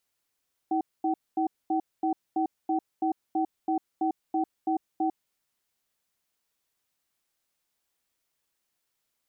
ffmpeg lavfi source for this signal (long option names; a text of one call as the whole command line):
ffmpeg -f lavfi -i "aevalsrc='0.0501*(sin(2*PI*321*t)+sin(2*PI*762*t))*clip(min(mod(t,0.33),0.1-mod(t,0.33))/0.005,0,1)':duration=4.62:sample_rate=44100" out.wav